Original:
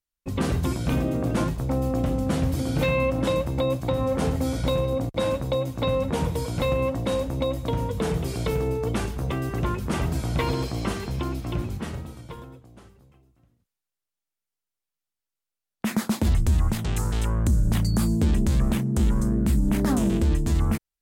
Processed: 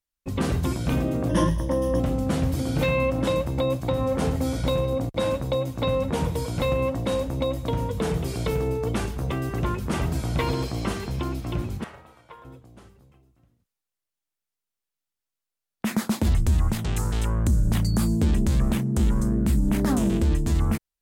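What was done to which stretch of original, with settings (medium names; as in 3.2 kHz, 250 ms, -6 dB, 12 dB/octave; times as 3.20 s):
1.29–2.00 s: rippled EQ curve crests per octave 1.2, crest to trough 15 dB
11.84–12.45 s: three-band isolator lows -19 dB, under 550 Hz, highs -13 dB, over 2.6 kHz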